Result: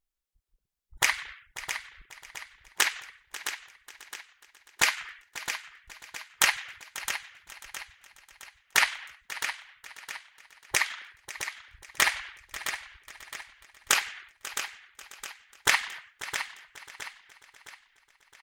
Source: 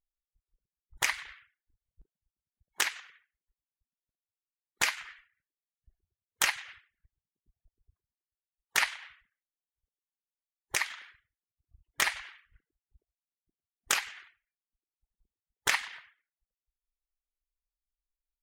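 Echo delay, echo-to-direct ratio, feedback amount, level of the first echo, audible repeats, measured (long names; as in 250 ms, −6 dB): 541 ms, −8.0 dB, repeats not evenly spaced, −16.0 dB, 10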